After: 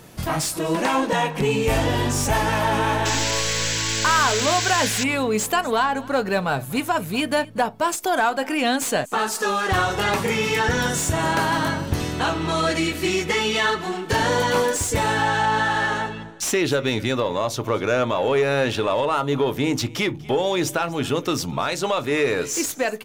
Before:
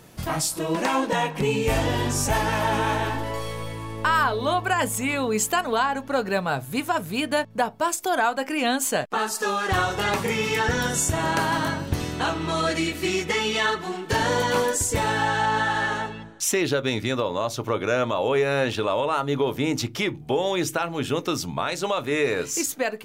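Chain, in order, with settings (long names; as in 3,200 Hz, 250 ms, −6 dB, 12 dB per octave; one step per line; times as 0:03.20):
in parallel at −5 dB: soft clipping −24.5 dBFS, distortion −10 dB
on the sum: single-tap delay 243 ms −22 dB
sound drawn into the spectrogram noise, 0:03.05–0:05.04, 1,400–8,000 Hz −25 dBFS
slew-rate limiting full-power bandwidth 500 Hz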